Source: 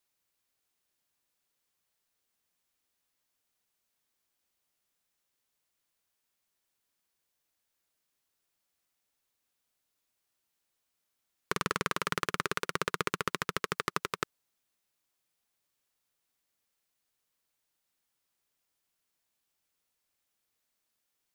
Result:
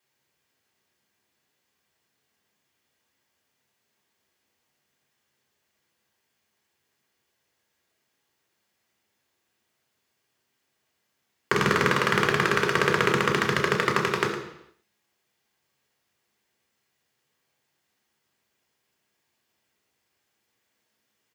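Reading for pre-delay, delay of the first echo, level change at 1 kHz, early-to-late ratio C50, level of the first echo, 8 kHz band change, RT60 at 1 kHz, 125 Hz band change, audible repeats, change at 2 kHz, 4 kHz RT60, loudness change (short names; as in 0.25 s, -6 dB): 3 ms, 0.11 s, +9.0 dB, 6.0 dB, -11.5 dB, +4.5 dB, 0.80 s, +13.0 dB, 1, +11.5 dB, 0.80 s, +10.5 dB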